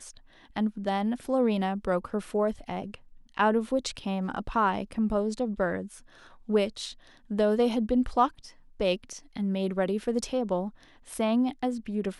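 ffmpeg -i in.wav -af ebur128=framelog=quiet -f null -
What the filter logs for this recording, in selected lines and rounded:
Integrated loudness:
  I:         -28.7 LUFS
  Threshold: -39.3 LUFS
Loudness range:
  LRA:         1.7 LU
  Threshold: -49.2 LUFS
  LRA low:   -30.1 LUFS
  LRA high:  -28.4 LUFS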